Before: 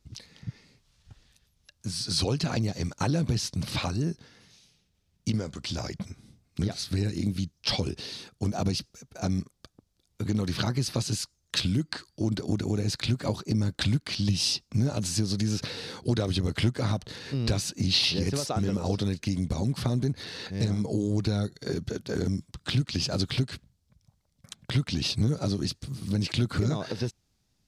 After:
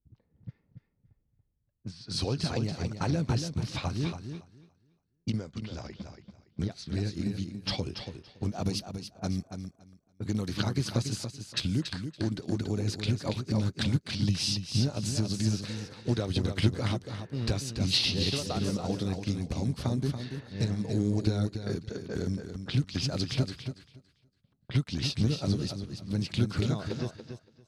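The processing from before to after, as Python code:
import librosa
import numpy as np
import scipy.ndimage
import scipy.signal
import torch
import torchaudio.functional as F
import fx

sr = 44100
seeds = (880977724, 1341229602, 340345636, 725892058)

y = fx.high_shelf(x, sr, hz=8200.0, db=fx.steps((0.0, -8.0), (8.62, 6.0), (10.52, -2.0)))
y = fx.env_lowpass(y, sr, base_hz=390.0, full_db=-26.5)
y = fx.echo_feedback(y, sr, ms=283, feedback_pct=29, wet_db=-5.5)
y = fx.upward_expand(y, sr, threshold_db=-46.0, expansion=1.5)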